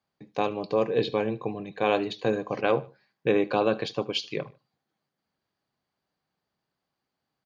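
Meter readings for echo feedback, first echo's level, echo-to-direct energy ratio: 32%, -20.5 dB, -20.0 dB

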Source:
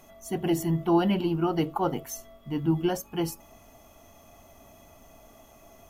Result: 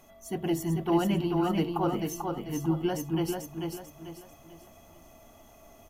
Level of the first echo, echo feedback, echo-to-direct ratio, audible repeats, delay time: -4.0 dB, 36%, -3.5 dB, 4, 442 ms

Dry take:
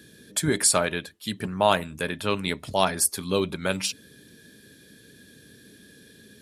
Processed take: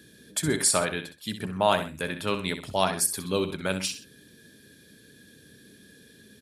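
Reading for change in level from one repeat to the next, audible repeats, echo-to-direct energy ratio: -9.0 dB, 2, -9.5 dB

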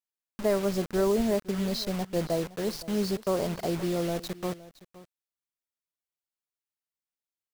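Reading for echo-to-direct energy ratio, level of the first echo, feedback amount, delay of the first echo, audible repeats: -18.5 dB, -18.5 dB, no regular repeats, 516 ms, 1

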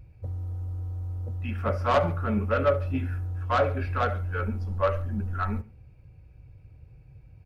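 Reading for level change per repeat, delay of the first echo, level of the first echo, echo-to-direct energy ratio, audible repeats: -4.5 dB, 70 ms, -20.0 dB, -18.5 dB, 2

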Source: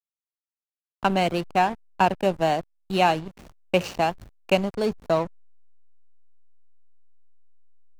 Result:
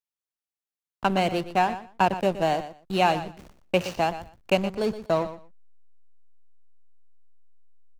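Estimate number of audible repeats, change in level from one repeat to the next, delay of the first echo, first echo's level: 2, -16.0 dB, 120 ms, -13.0 dB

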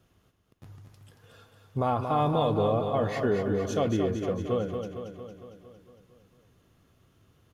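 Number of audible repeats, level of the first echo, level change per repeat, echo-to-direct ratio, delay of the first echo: 7, -6.5 dB, -4.5 dB, -4.5 dB, 228 ms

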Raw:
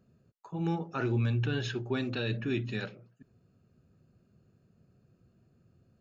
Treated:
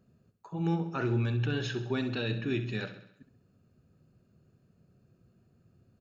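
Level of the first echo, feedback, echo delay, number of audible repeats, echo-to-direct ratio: -11.5 dB, 54%, 66 ms, 5, -10.0 dB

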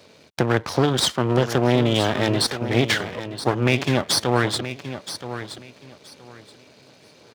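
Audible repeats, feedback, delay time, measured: 2, 21%, 974 ms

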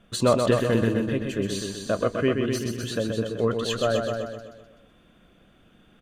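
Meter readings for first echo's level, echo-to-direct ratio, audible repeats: -5.5 dB, -2.5 dB, 6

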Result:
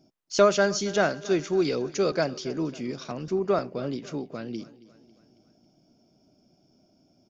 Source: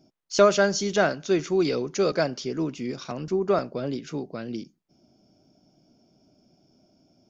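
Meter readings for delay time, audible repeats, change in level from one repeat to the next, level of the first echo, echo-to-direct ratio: 274 ms, 3, -5.5 dB, -19.0 dB, -17.5 dB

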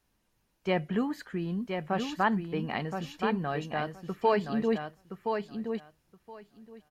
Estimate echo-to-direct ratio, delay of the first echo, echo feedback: -6.0 dB, 1021 ms, 15%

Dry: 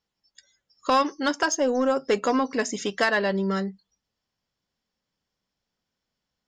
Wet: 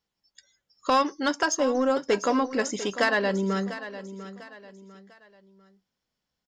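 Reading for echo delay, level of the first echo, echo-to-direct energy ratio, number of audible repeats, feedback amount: 697 ms, -13.5 dB, -13.0 dB, 3, 36%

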